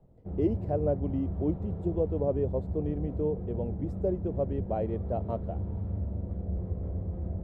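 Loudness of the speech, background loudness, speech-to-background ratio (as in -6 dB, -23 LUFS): -32.5 LUFS, -36.0 LUFS, 3.5 dB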